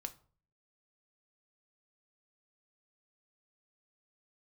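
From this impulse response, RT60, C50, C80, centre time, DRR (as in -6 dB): 0.45 s, 17.0 dB, 22.0 dB, 5 ms, 7.0 dB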